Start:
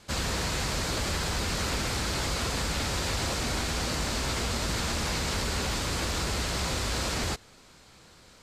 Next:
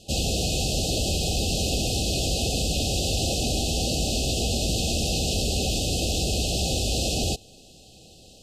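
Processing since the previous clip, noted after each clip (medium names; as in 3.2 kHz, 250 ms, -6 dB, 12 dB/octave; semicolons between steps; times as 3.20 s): FFT band-reject 800–2500 Hz; trim +5.5 dB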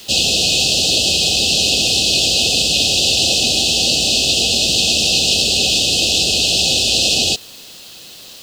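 frequency weighting D; in parallel at -9 dB: word length cut 6-bit, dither triangular; on the sum: trim +2 dB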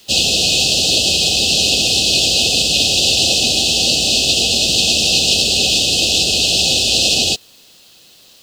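upward expansion 1.5:1, over -34 dBFS; trim +1.5 dB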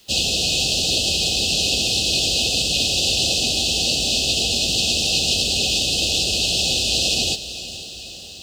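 bass shelf 77 Hz +8.5 dB; on a send: echo that smears into a reverb 459 ms, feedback 63%, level -13.5 dB; on the sum: trim -6 dB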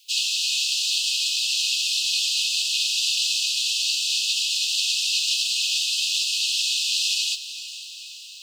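steep high-pass 2.3 kHz 96 dB/octave; trim -3 dB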